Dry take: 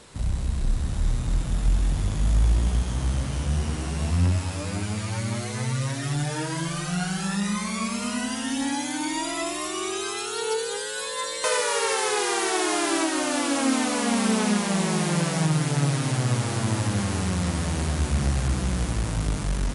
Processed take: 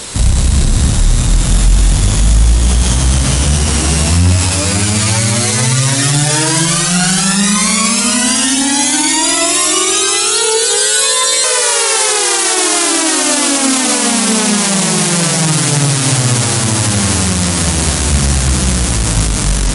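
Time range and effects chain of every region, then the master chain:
0.51–0.97 HPF 150 Hz 6 dB/oct + low shelf 190 Hz +9.5 dB
whole clip: high shelf 3400 Hz +11.5 dB; de-hum 76.4 Hz, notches 32; maximiser +19.5 dB; gain -1 dB

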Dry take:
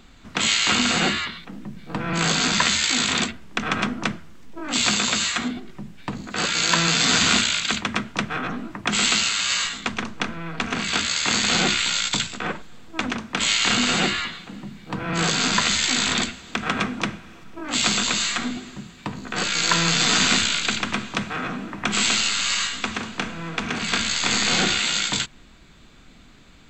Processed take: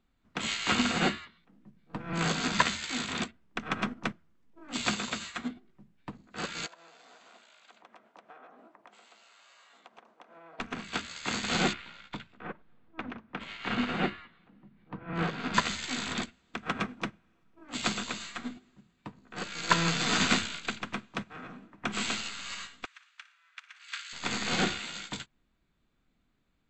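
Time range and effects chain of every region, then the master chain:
6.66–10.6 HPF 370 Hz + bell 670 Hz +13.5 dB 1.5 oct + compressor 16:1, threshold -27 dBFS
11.73–15.54 LPF 2600 Hz + upward compressor, threshold -29 dBFS
22.85–24.13 HPF 1400 Hz 24 dB/oct + flutter echo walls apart 10 m, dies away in 0.44 s
whole clip: high shelf 2700 Hz -8 dB; upward expander 2.5:1, over -35 dBFS

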